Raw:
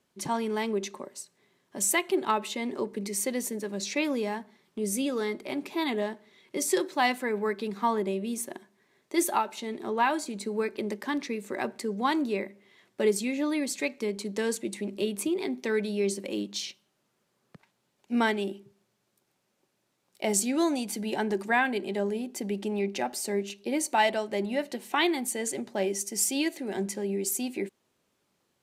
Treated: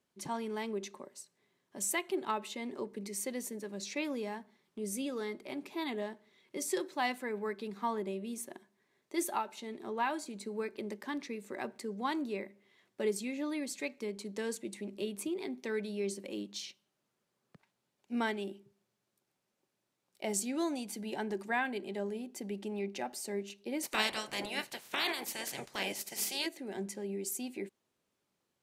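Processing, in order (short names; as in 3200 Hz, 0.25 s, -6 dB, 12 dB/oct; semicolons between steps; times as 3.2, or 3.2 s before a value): 23.82–26.45 spectral limiter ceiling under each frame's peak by 27 dB; gain -8 dB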